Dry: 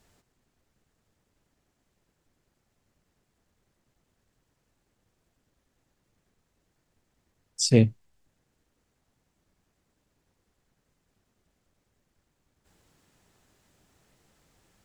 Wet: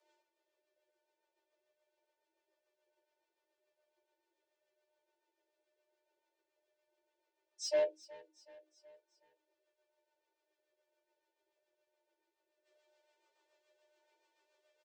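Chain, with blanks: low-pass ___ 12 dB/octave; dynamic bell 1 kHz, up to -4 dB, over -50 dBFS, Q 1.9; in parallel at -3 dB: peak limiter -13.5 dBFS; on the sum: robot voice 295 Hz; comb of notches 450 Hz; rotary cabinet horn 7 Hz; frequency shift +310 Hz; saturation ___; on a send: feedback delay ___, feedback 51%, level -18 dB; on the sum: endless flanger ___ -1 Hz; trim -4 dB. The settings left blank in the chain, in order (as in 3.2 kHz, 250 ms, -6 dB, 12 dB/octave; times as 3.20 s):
4.3 kHz, -21 dBFS, 372 ms, 11.5 ms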